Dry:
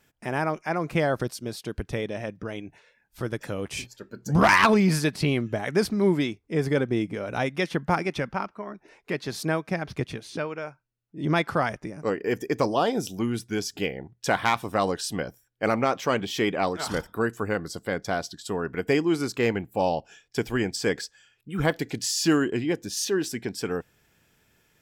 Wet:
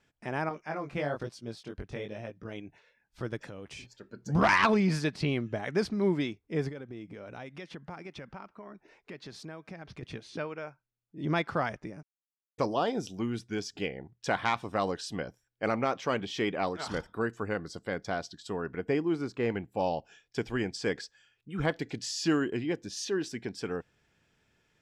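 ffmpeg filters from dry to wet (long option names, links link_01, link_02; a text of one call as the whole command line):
ffmpeg -i in.wav -filter_complex "[0:a]asettb=1/sr,asplit=3[link_01][link_02][link_03];[link_01]atrim=end=0.494[link_04];[link_02]atrim=start=0.49:end=2.52,asetpts=PTS-STARTPTS,afade=type=in:duration=0.004:curve=qsin,afade=type=out:start_time=2.026:duration=0.004:curve=qsin,flanger=delay=17:depth=4.9:speed=1.1[link_05];[link_03]atrim=start=2.516[link_06];[link_04][link_05]acrossfade=duration=0.004:curve1=hsin:curve2=qsin[link_07];[link_07][link_06]acrossfade=duration=0.004:curve1=qsin:curve2=hsin,asettb=1/sr,asplit=3[link_08][link_09][link_10];[link_08]atrim=end=3.464[link_11];[link_09]atrim=start=3.46:end=4.07,asetpts=PTS-STARTPTS,afade=type=in:duration=0.004:curve=qsin,afade=type=out:start_time=0.606:duration=0.004:curve=qsin,acompressor=threshold=-35dB:ratio=4:attack=3.2:release=140:knee=1:detection=peak[link_12];[link_10]atrim=start=4.066[link_13];[link_11][link_12]acrossfade=duration=0.004:curve1=hsin:curve2=qsin[link_14];[link_14][link_13]acrossfade=duration=0.004:curve1=qsin:curve2=hsin,asettb=1/sr,asplit=3[link_15][link_16][link_17];[link_15]atrim=end=6.694[link_18];[link_16]atrim=start=6.69:end=10.03,asetpts=PTS-STARTPTS,afade=type=in:duration=0.004:curve=qsin,afade=type=out:start_time=3.336:duration=0.004:curve=qsin,acompressor=threshold=-37dB:ratio=3:attack=3.2:release=140:knee=1:detection=peak[link_19];[link_17]atrim=start=10.026[link_20];[link_18][link_19]acrossfade=duration=0.004:curve1=hsin:curve2=qsin[link_21];[link_21][link_20]acrossfade=duration=0.004:curve1=qsin:curve2=hsin,asettb=1/sr,asplit=3[link_22][link_23][link_24];[link_22]atrim=end=18.764[link_25];[link_23]atrim=start=18.76:end=19.5,asetpts=PTS-STARTPTS,afade=type=in:duration=0.004:curve=qsin,afade=type=out:start_time=0.736:duration=0.004:curve=qsin,highshelf=frequency=2300:gain=-9.5[link_26];[link_24]atrim=start=19.496[link_27];[link_25][link_26]acrossfade=duration=0.004:curve1=hsin:curve2=qsin[link_28];[link_28][link_27]acrossfade=duration=0.004:curve1=qsin:curve2=hsin,asplit=3[link_29][link_30][link_31];[link_29]atrim=end=12.03,asetpts=PTS-STARTPTS,afade=type=out:start_time=12.026:duration=0.004:curve=hsin[link_32];[link_30]atrim=start=12.03:end=12.58,asetpts=PTS-STARTPTS,volume=0[link_33];[link_31]atrim=start=12.58,asetpts=PTS-STARTPTS,afade=type=in:duration=0.004:curve=hsin[link_34];[link_32][link_33][link_34]concat=n=3:v=0:a=1,lowpass=6000,volume=-5.5dB" out.wav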